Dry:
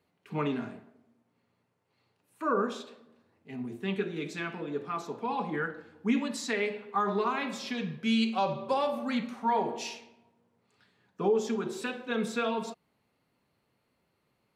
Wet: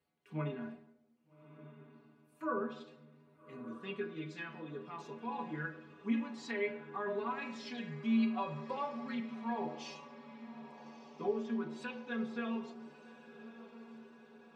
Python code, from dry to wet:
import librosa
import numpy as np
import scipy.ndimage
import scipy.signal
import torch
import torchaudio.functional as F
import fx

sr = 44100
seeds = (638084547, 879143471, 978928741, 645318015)

y = fx.stiff_resonator(x, sr, f0_hz=74.0, decay_s=0.3, stiffness=0.008)
y = fx.env_lowpass_down(y, sr, base_hz=2700.0, full_db=-36.0)
y = fx.echo_diffused(y, sr, ms=1239, feedback_pct=58, wet_db=-14.5)